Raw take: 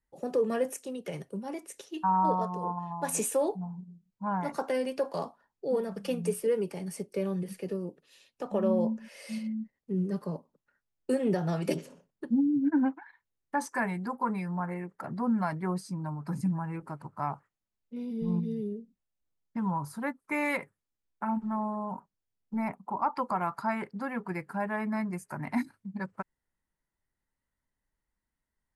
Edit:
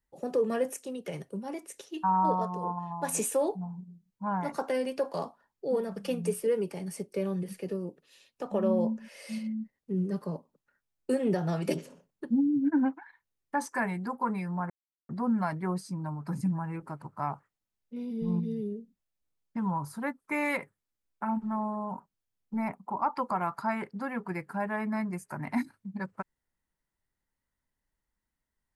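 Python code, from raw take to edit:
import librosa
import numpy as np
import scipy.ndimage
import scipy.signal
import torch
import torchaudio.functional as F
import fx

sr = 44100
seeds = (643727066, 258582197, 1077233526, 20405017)

y = fx.edit(x, sr, fx.silence(start_s=14.7, length_s=0.39), tone=tone)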